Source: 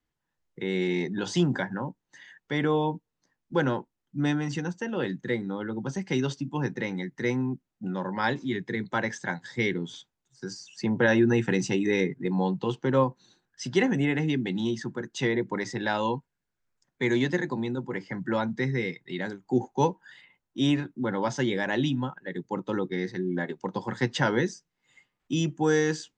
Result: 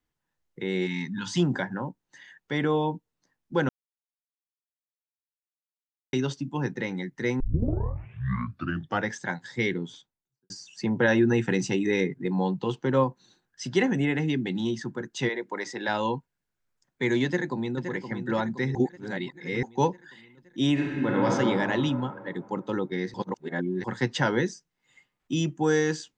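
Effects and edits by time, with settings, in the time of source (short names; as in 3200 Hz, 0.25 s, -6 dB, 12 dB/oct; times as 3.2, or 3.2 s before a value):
0.86–1.38 spectral gain 290–840 Hz -19 dB
3.69–6.13 mute
7.4 tape start 1.73 s
9.73–10.5 studio fade out
15.28–15.87 HPF 560 Hz -> 260 Hz
17.25–17.86 echo throw 0.52 s, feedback 60%, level -8.5 dB
18.75–19.63 reverse
20.72–21.3 reverb throw, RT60 2.7 s, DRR -3 dB
23.14–23.84 reverse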